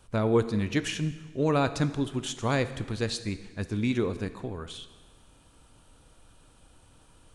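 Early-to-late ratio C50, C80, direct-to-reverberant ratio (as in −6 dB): 13.5 dB, 14.5 dB, 11.5 dB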